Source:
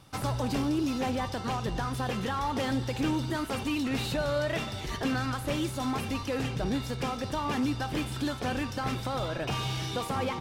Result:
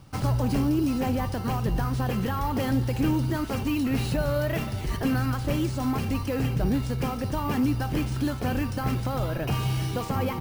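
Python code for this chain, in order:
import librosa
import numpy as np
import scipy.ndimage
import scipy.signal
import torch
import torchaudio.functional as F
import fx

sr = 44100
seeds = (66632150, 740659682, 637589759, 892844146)

y = fx.low_shelf(x, sr, hz=260.0, db=9.5)
y = fx.notch(y, sr, hz=3600.0, q=7.7)
y = np.repeat(y[::3], 3)[:len(y)]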